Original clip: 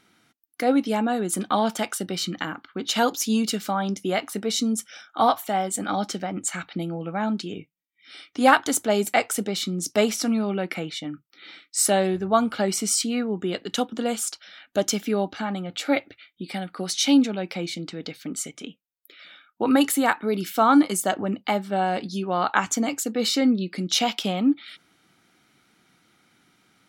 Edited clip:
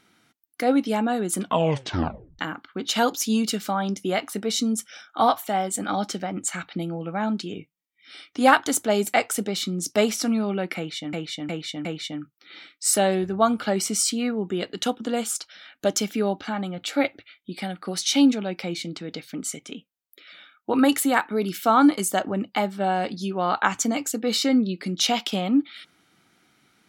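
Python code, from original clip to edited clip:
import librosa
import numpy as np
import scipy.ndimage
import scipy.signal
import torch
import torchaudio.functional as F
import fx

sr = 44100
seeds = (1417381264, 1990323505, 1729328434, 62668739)

y = fx.edit(x, sr, fx.tape_stop(start_s=1.4, length_s=0.99),
    fx.repeat(start_s=10.77, length_s=0.36, count=4), tone=tone)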